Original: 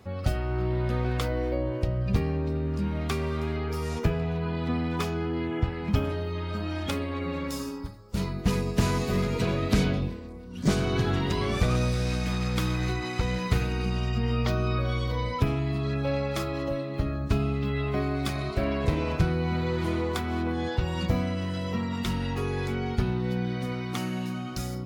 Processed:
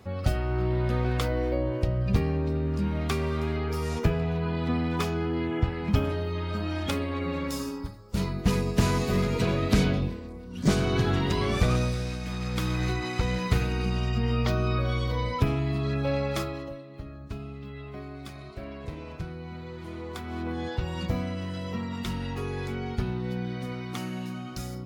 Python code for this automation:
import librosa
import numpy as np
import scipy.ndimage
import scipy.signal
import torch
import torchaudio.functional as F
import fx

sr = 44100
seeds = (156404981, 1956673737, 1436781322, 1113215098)

y = fx.gain(x, sr, db=fx.line((11.71, 1.0), (12.19, -6.0), (12.81, 0.5), (16.39, 0.5), (16.82, -12.0), (19.83, -12.0), (20.52, -3.0)))